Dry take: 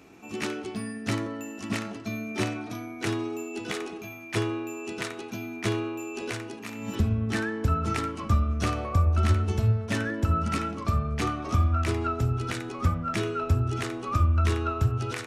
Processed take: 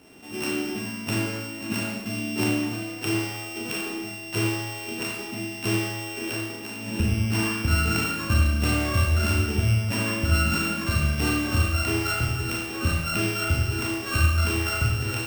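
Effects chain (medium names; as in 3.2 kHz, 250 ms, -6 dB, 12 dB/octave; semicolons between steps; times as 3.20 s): sorted samples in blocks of 16 samples; Schroeder reverb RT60 0.8 s, combs from 27 ms, DRR -1.5 dB; trim -1 dB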